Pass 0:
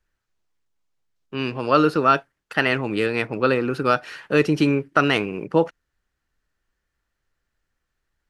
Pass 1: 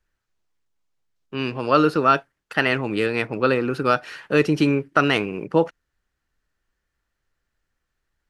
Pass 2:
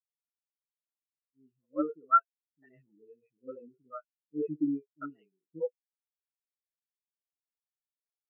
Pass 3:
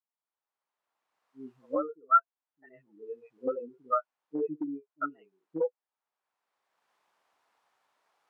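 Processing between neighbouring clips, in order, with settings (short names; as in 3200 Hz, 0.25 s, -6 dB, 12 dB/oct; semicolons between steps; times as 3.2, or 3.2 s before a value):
nothing audible
three bands offset in time lows, mids, highs 50/80 ms, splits 400/1900 Hz; spectral expander 4:1; gain -8 dB
recorder AGC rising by 20 dB/s; band-pass 920 Hz, Q 1.6; gain +5 dB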